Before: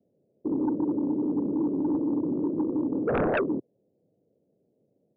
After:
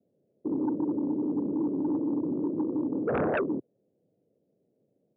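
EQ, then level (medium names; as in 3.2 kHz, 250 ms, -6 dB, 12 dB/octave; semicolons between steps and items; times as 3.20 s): high-pass 74 Hz; low-pass 2.8 kHz; -2.0 dB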